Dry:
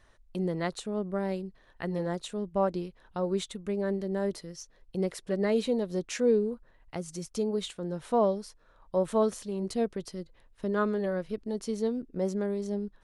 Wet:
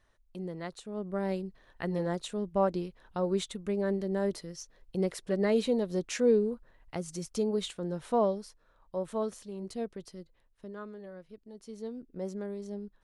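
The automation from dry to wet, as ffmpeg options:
-af "volume=8.5dB,afade=t=in:st=0.85:d=0.46:silence=0.398107,afade=t=out:st=7.82:d=1.14:silence=0.446684,afade=t=out:st=10.18:d=0.62:silence=0.375837,afade=t=in:st=11.54:d=0.62:silence=0.375837"

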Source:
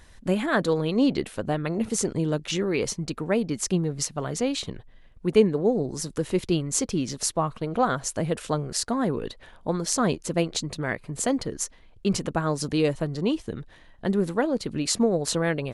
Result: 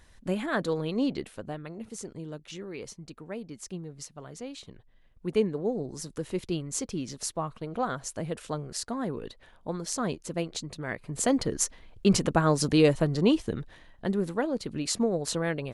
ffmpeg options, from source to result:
-af "volume=11dB,afade=t=out:st=0.93:d=0.83:silence=0.375837,afade=t=in:st=4.65:d=0.61:silence=0.446684,afade=t=in:st=10.84:d=0.74:silence=0.334965,afade=t=out:st=13.36:d=0.8:silence=0.446684"

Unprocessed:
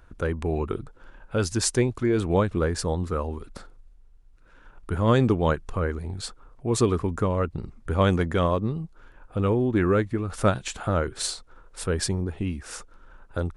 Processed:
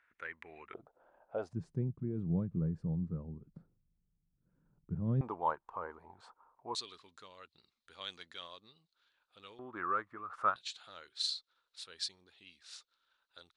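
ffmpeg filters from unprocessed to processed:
-af "asetnsamples=n=441:p=0,asendcmd='0.74 bandpass f 680;1.53 bandpass f 160;5.21 bandpass f 930;6.75 bandpass f 4000;9.59 bandpass f 1200;10.56 bandpass f 4000',bandpass=f=2k:t=q:w=4.9:csg=0"

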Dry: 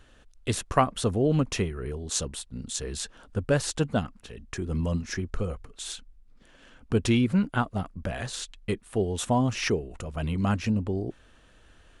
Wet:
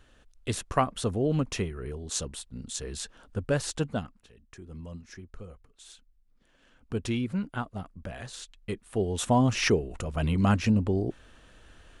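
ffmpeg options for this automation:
-af "volume=13.5dB,afade=t=out:st=3.81:d=0.51:silence=0.281838,afade=t=in:st=5.92:d=1.08:silence=0.446684,afade=t=in:st=8.58:d=0.97:silence=0.334965"

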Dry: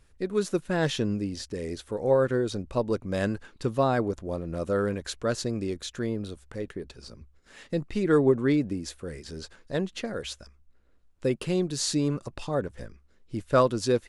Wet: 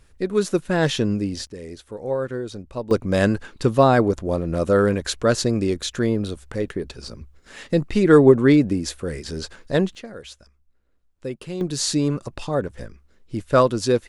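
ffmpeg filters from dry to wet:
-af "asetnsamples=n=441:p=0,asendcmd='1.47 volume volume -2.5dB;2.91 volume volume 9dB;9.95 volume volume -4dB;11.61 volume volume 5dB',volume=6dB"

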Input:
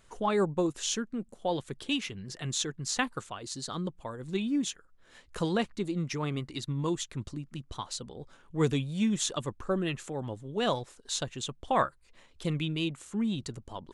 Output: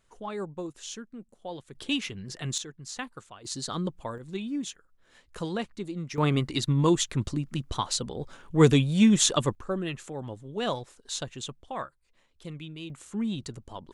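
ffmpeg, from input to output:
-af "asetnsamples=n=441:p=0,asendcmd='1.75 volume volume 2dB;2.58 volume volume -7dB;3.45 volume volume 3.5dB;4.18 volume volume -3dB;6.18 volume volume 8.5dB;9.55 volume volume -1dB;11.63 volume volume -9dB;12.9 volume volume 0dB',volume=-8dB"

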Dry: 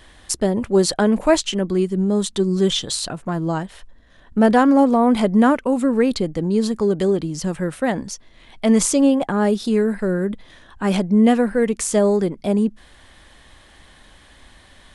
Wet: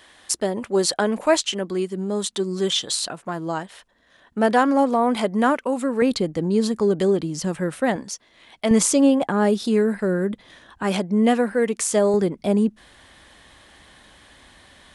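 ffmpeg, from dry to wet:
-af "asetnsamples=n=441:p=0,asendcmd='6.02 highpass f 140;7.96 highpass f 410;8.71 highpass f 140;10.83 highpass f 310;12.14 highpass f 100',highpass=f=480:p=1"

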